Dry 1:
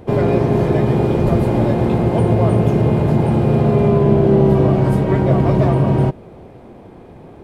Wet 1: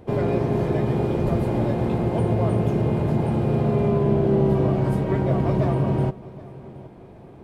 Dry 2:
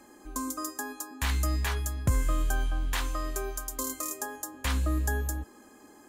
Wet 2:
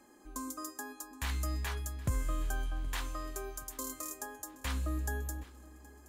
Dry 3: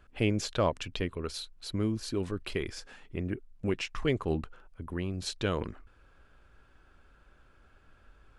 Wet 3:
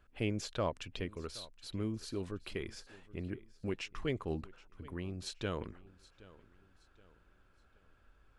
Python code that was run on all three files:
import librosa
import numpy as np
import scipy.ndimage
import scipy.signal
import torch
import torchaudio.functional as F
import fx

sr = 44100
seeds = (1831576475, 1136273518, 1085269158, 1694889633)

y = fx.echo_feedback(x, sr, ms=772, feedback_pct=37, wet_db=-20.5)
y = y * 10.0 ** (-7.0 / 20.0)